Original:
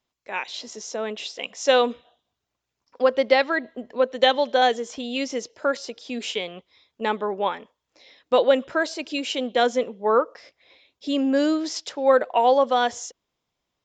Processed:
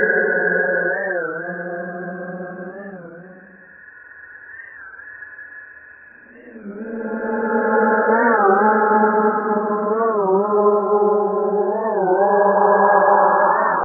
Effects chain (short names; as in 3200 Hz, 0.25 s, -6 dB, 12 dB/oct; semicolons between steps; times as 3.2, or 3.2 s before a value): nonlinear frequency compression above 1300 Hz 4:1; in parallel at -3 dB: upward compressor, threshold -23 dBFS; on the sum: Paulstretch 12×, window 0.25 s, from 6.38; record warp 33 1/3 rpm, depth 160 cents; gain +4.5 dB